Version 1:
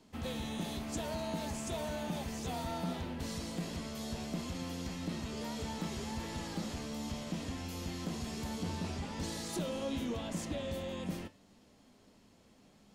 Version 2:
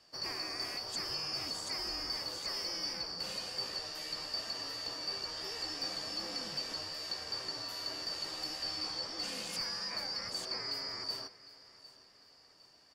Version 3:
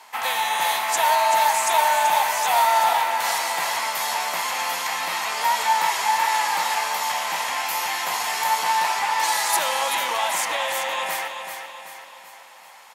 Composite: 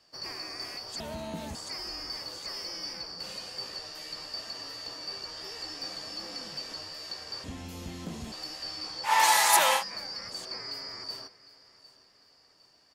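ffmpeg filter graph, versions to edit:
ffmpeg -i take0.wav -i take1.wav -i take2.wav -filter_complex "[0:a]asplit=2[link_01][link_02];[1:a]asplit=4[link_03][link_04][link_05][link_06];[link_03]atrim=end=1.002[link_07];[link_01]atrim=start=0.998:end=1.552[link_08];[link_04]atrim=start=1.548:end=7.442[link_09];[link_02]atrim=start=7.438:end=8.322[link_10];[link_05]atrim=start=8.318:end=9.13[link_11];[2:a]atrim=start=9.03:end=9.84[link_12];[link_06]atrim=start=9.74[link_13];[link_07][link_08]acrossfade=duration=0.004:curve1=hsin:curve2=hsin[link_14];[link_14][link_09]acrossfade=duration=0.004:curve1=hsin:curve2=hsin[link_15];[link_15][link_10]acrossfade=duration=0.004:curve1=hsin:curve2=hsin[link_16];[link_16][link_11]acrossfade=duration=0.004:curve1=hsin:curve2=hsin[link_17];[link_17][link_12]acrossfade=duration=0.1:curve1=tri:curve2=tri[link_18];[link_18][link_13]acrossfade=duration=0.1:curve1=tri:curve2=tri" out.wav

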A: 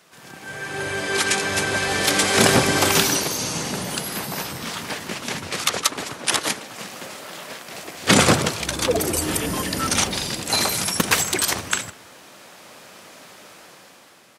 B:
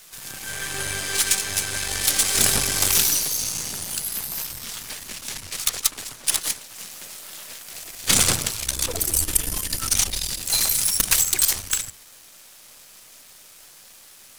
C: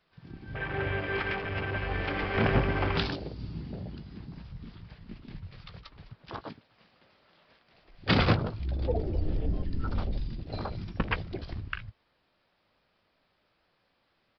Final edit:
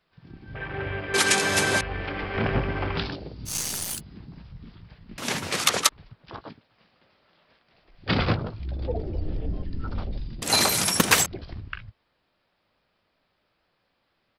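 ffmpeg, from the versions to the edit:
ffmpeg -i take0.wav -i take1.wav -i take2.wav -filter_complex "[0:a]asplit=3[link_01][link_02][link_03];[2:a]asplit=5[link_04][link_05][link_06][link_07][link_08];[link_04]atrim=end=1.142[link_09];[link_01]atrim=start=1.138:end=1.812[link_10];[link_05]atrim=start=1.808:end=3.55[link_11];[1:a]atrim=start=3.45:end=4.01[link_12];[link_06]atrim=start=3.91:end=5.182[link_13];[link_02]atrim=start=5.178:end=5.892[link_14];[link_07]atrim=start=5.888:end=10.422[link_15];[link_03]atrim=start=10.418:end=11.262[link_16];[link_08]atrim=start=11.258[link_17];[link_09][link_10]acrossfade=duration=0.004:curve1=hsin:curve2=hsin[link_18];[link_18][link_11]acrossfade=duration=0.004:curve1=hsin:curve2=hsin[link_19];[link_19][link_12]acrossfade=duration=0.1:curve1=tri:curve2=tri[link_20];[link_20][link_13]acrossfade=duration=0.1:curve1=tri:curve2=tri[link_21];[link_21][link_14]acrossfade=duration=0.004:curve1=hsin:curve2=hsin[link_22];[link_22][link_15]acrossfade=duration=0.004:curve1=hsin:curve2=hsin[link_23];[link_23][link_16]acrossfade=duration=0.004:curve1=hsin:curve2=hsin[link_24];[link_24][link_17]acrossfade=duration=0.004:curve1=hsin:curve2=hsin" out.wav

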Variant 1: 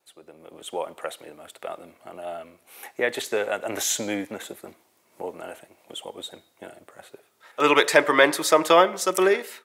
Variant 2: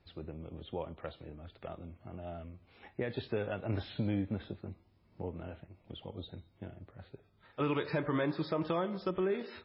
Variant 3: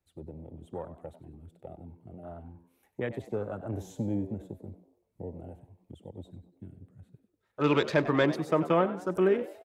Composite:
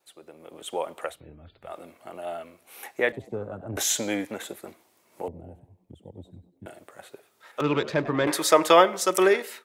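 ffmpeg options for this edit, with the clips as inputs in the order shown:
ffmpeg -i take0.wav -i take1.wav -i take2.wav -filter_complex "[2:a]asplit=3[link_01][link_02][link_03];[0:a]asplit=5[link_04][link_05][link_06][link_07][link_08];[link_04]atrim=end=1.21[link_09];[1:a]atrim=start=1.05:end=1.77[link_10];[link_05]atrim=start=1.61:end=3.122[link_11];[link_01]atrim=start=3.118:end=3.772[link_12];[link_06]atrim=start=3.768:end=5.282[link_13];[link_02]atrim=start=5.278:end=6.662[link_14];[link_07]atrim=start=6.658:end=7.612[link_15];[link_03]atrim=start=7.608:end=8.272[link_16];[link_08]atrim=start=8.268[link_17];[link_09][link_10]acrossfade=duration=0.16:curve1=tri:curve2=tri[link_18];[link_18][link_11]acrossfade=duration=0.16:curve1=tri:curve2=tri[link_19];[link_19][link_12]acrossfade=duration=0.004:curve1=hsin:curve2=hsin[link_20];[link_20][link_13]acrossfade=duration=0.004:curve1=hsin:curve2=hsin[link_21];[link_21][link_14]acrossfade=duration=0.004:curve1=hsin:curve2=hsin[link_22];[link_22][link_15]acrossfade=duration=0.004:curve1=hsin:curve2=hsin[link_23];[link_23][link_16]acrossfade=duration=0.004:curve1=hsin:curve2=hsin[link_24];[link_24][link_17]acrossfade=duration=0.004:curve1=hsin:curve2=hsin" out.wav

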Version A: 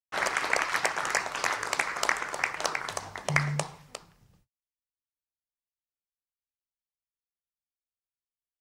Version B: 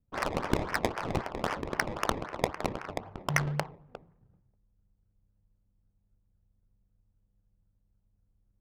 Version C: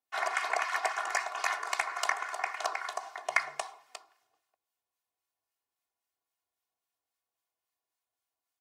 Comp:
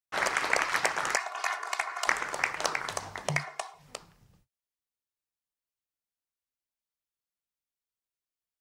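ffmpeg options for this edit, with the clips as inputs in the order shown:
ffmpeg -i take0.wav -i take1.wav -i take2.wav -filter_complex "[2:a]asplit=2[link_01][link_02];[0:a]asplit=3[link_03][link_04][link_05];[link_03]atrim=end=1.162[link_06];[link_01]atrim=start=1.158:end=2.072[link_07];[link_04]atrim=start=2.068:end=3.45[link_08];[link_02]atrim=start=3.29:end=3.89[link_09];[link_05]atrim=start=3.73[link_10];[link_06][link_07]acrossfade=duration=0.004:curve1=hsin:curve2=hsin[link_11];[link_11][link_08]acrossfade=duration=0.004:curve1=hsin:curve2=hsin[link_12];[link_12][link_09]acrossfade=duration=0.16:curve1=tri:curve2=tri[link_13];[link_13][link_10]acrossfade=duration=0.16:curve1=tri:curve2=tri" out.wav

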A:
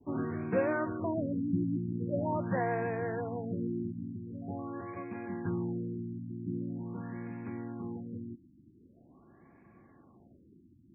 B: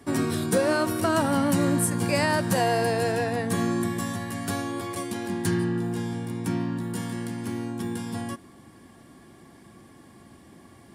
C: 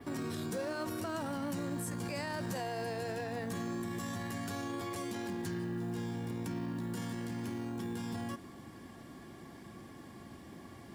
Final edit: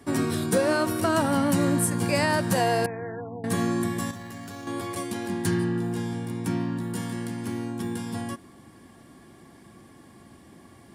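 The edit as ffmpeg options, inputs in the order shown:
ffmpeg -i take0.wav -i take1.wav -i take2.wav -filter_complex "[1:a]asplit=3[link_01][link_02][link_03];[link_01]atrim=end=2.862[link_04];[0:a]atrim=start=2.858:end=3.442[link_05];[link_02]atrim=start=3.438:end=4.112[link_06];[2:a]atrim=start=4.108:end=4.672[link_07];[link_03]atrim=start=4.668[link_08];[link_04][link_05]acrossfade=duration=0.004:curve1=hsin:curve2=hsin[link_09];[link_09][link_06]acrossfade=duration=0.004:curve1=hsin:curve2=hsin[link_10];[link_10][link_07]acrossfade=duration=0.004:curve1=hsin:curve2=hsin[link_11];[link_11][link_08]acrossfade=duration=0.004:curve1=hsin:curve2=hsin" out.wav

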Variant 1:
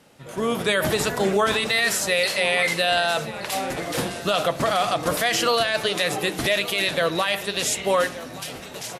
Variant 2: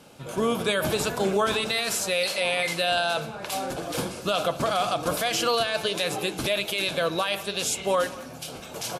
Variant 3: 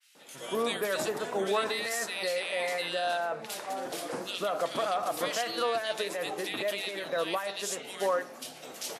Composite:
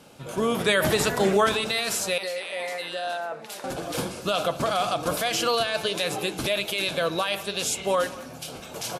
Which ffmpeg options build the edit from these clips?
ffmpeg -i take0.wav -i take1.wav -i take2.wav -filter_complex "[1:a]asplit=3[link_01][link_02][link_03];[link_01]atrim=end=0.542[link_04];[0:a]atrim=start=0.538:end=1.492[link_05];[link_02]atrim=start=1.488:end=2.182[link_06];[2:a]atrim=start=2.178:end=3.642[link_07];[link_03]atrim=start=3.638[link_08];[link_04][link_05]acrossfade=duration=0.004:curve1=hsin:curve2=hsin[link_09];[link_09][link_06]acrossfade=duration=0.004:curve1=hsin:curve2=hsin[link_10];[link_10][link_07]acrossfade=duration=0.004:curve1=hsin:curve2=hsin[link_11];[link_11][link_08]acrossfade=duration=0.004:curve1=hsin:curve2=hsin" out.wav

